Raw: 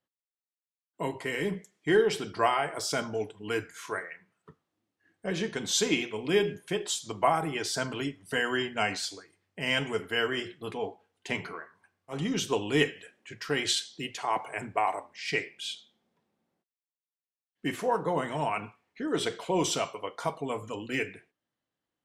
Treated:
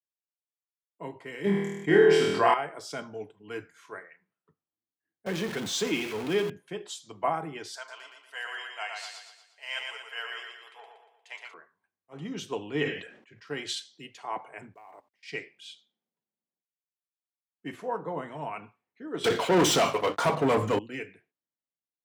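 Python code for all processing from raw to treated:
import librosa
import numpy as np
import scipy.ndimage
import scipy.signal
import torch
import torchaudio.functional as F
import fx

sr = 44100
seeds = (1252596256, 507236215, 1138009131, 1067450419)

y = fx.chain(x, sr, fx.room_flutter(wall_m=4.3, rt60_s=0.77),
    fx.env_flatten(amount_pct=50), at=(1.44, 2.54))
y = fx.chain(y, sr, fx.zero_step(step_db=-27.5),
    fx.band_squash(depth_pct=40), at=(5.26, 6.5))
y = fx.chain(y, sr, fx.highpass(hz=700.0, slope=24),
    fx.echo_feedback(ms=118, feedback_pct=56, wet_db=-3.5), at=(7.76, 11.54))
y = fx.chain(y, sr, fx.air_absorb(metres=78.0),
    fx.sustainer(db_per_s=73.0), at=(12.66, 13.47))
y = fx.chain(y, sr, fx.high_shelf(hz=8100.0, db=-7.5),
    fx.level_steps(step_db=20),
    fx.quant_companded(bits=6), at=(14.74, 15.23))
y = fx.chain(y, sr, fx.hum_notches(base_hz=50, count=6),
    fx.leveller(passes=5), at=(19.24, 20.79))
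y = scipy.signal.sosfilt(scipy.signal.butter(2, 96.0, 'highpass', fs=sr, output='sos'), y)
y = fx.high_shelf(y, sr, hz=4500.0, db=-8.0)
y = fx.band_widen(y, sr, depth_pct=40)
y = y * librosa.db_to_amplitude(-4.5)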